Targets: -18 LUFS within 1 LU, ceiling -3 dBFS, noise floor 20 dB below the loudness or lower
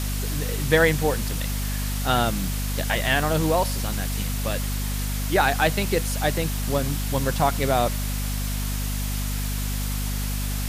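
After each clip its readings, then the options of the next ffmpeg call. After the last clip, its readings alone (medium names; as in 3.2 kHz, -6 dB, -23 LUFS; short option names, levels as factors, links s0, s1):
hum 50 Hz; highest harmonic 250 Hz; hum level -25 dBFS; noise floor -27 dBFS; noise floor target -45 dBFS; loudness -24.5 LUFS; peak level -5.0 dBFS; loudness target -18.0 LUFS
-> -af "bandreject=f=50:t=h:w=4,bandreject=f=100:t=h:w=4,bandreject=f=150:t=h:w=4,bandreject=f=200:t=h:w=4,bandreject=f=250:t=h:w=4"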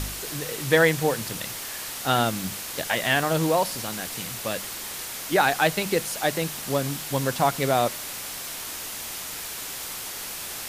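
hum not found; noise floor -35 dBFS; noise floor target -46 dBFS
-> -af "afftdn=nr=11:nf=-35"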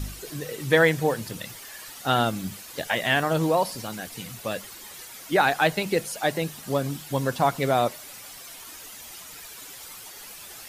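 noise floor -43 dBFS; noise floor target -46 dBFS
-> -af "afftdn=nr=6:nf=-43"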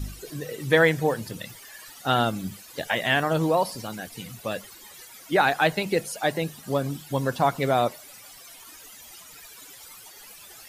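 noise floor -47 dBFS; loudness -25.5 LUFS; peak level -6.0 dBFS; loudness target -18.0 LUFS
-> -af "volume=2.37,alimiter=limit=0.708:level=0:latency=1"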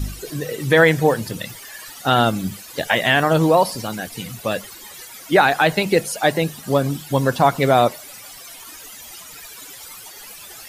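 loudness -18.5 LUFS; peak level -3.0 dBFS; noise floor -39 dBFS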